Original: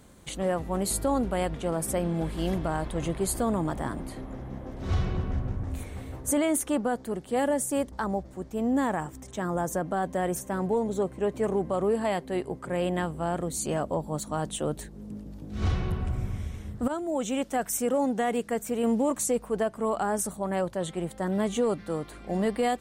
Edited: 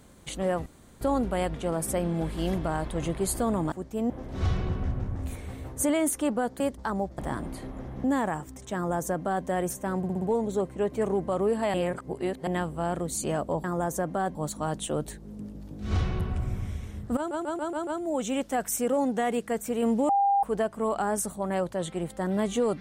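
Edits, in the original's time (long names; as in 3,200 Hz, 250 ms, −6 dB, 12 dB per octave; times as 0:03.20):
0:00.66–0:01.01: fill with room tone
0:03.72–0:04.58: swap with 0:08.32–0:08.70
0:07.08–0:07.74: remove
0:09.41–0:10.12: duplicate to 0:14.06
0:10.64: stutter 0.06 s, 5 plays
0:12.16–0:12.89: reverse
0:16.88: stutter 0.14 s, 6 plays
0:19.10–0:19.44: beep over 799 Hz −19.5 dBFS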